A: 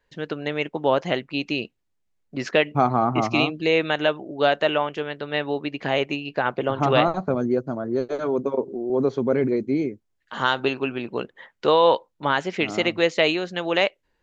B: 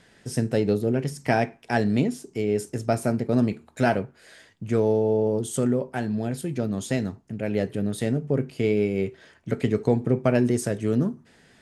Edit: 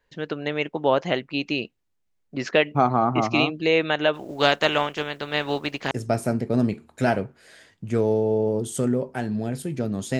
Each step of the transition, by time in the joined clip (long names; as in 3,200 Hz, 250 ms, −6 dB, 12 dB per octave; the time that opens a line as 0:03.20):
A
0:04.13–0:05.91: compressing power law on the bin magnitudes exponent 0.64
0:05.91: continue with B from 0:02.70